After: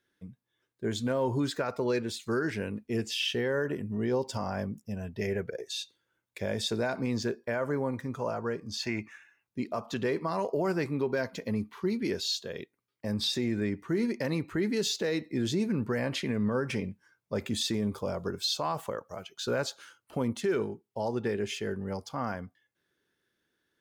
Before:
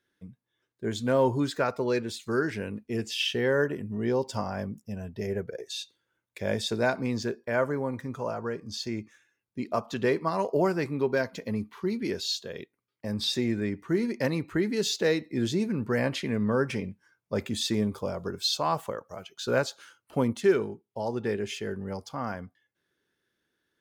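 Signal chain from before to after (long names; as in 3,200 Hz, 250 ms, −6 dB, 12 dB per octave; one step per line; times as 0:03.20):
0:05.01–0:05.50: dynamic equaliser 2,300 Hz, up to +7 dB, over −56 dBFS, Q 0.9
0:08.79–0:09.47: gain on a spectral selection 620–3,000 Hz +10 dB
brickwall limiter −20.5 dBFS, peak gain reduction 8 dB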